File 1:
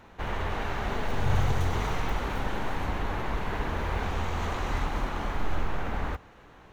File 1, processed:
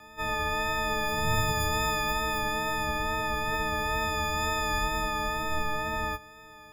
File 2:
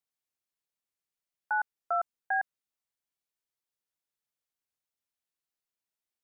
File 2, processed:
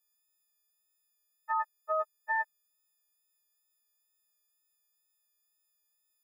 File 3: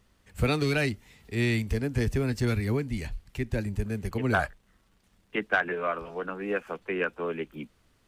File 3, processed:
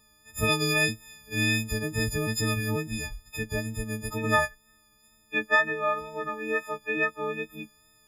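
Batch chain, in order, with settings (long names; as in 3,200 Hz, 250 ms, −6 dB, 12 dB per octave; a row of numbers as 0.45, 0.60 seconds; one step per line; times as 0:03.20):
every partial snapped to a pitch grid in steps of 6 semitones
tape wow and flutter 21 cents
level −2 dB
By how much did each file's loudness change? +3.0, −1.0, +2.0 LU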